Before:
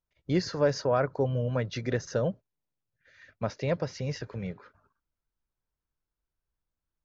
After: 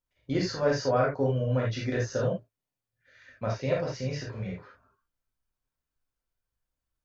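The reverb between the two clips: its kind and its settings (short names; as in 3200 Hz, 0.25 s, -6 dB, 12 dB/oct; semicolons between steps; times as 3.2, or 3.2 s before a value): non-linear reverb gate 0.1 s flat, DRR -4 dB; gain -4 dB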